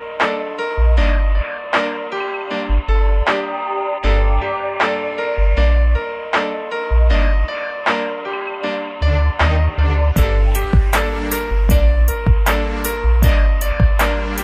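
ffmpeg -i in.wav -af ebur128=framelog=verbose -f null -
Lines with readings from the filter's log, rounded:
Integrated loudness:
  I:         -17.6 LUFS
  Threshold: -27.6 LUFS
Loudness range:
  LRA:         2.6 LU
  Threshold: -37.7 LUFS
  LRA low:   -19.0 LUFS
  LRA high:  -16.4 LUFS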